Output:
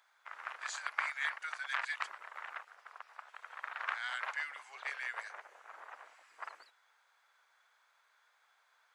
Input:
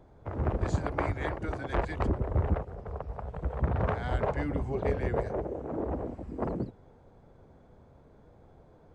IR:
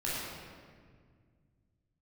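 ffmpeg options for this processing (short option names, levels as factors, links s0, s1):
-af "highpass=f=1400:w=0.5412,highpass=f=1400:w=1.3066,volume=1.88"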